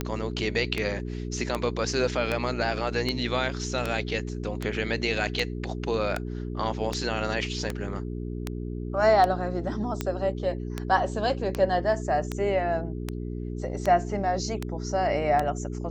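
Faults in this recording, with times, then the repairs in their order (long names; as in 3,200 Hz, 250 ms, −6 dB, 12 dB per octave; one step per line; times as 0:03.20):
mains hum 60 Hz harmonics 7 −33 dBFS
scratch tick 78 rpm −13 dBFS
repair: click removal
hum removal 60 Hz, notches 7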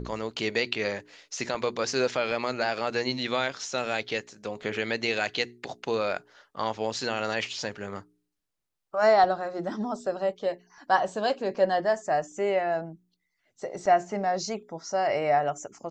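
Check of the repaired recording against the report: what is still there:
none of them is left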